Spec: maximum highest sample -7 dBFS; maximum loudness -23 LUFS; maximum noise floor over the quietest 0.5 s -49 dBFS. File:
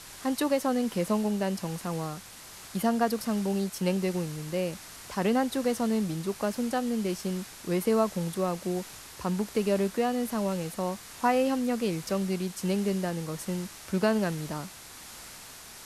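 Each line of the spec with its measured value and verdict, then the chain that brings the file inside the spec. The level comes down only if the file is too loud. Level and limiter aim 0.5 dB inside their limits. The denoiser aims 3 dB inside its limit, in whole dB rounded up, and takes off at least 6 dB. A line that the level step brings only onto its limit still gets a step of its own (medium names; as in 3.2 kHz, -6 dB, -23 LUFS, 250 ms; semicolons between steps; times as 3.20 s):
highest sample -12.0 dBFS: pass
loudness -29.5 LUFS: pass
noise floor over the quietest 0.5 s -47 dBFS: fail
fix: noise reduction 6 dB, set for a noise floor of -47 dBFS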